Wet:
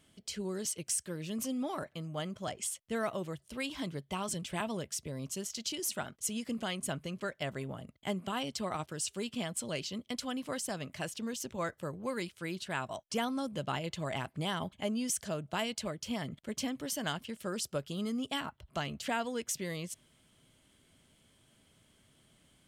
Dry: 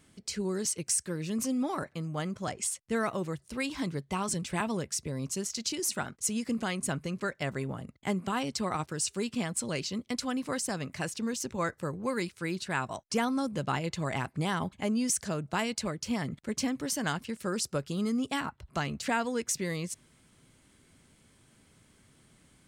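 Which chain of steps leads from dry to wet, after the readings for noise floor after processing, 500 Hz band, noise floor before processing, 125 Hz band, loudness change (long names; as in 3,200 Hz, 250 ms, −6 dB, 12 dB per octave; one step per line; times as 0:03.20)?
−69 dBFS, −3.5 dB, −64 dBFS, −5.5 dB, −4.5 dB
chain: thirty-one-band graphic EQ 630 Hz +6 dB, 3,150 Hz +9 dB, 12,500 Hz +7 dB
level −5.5 dB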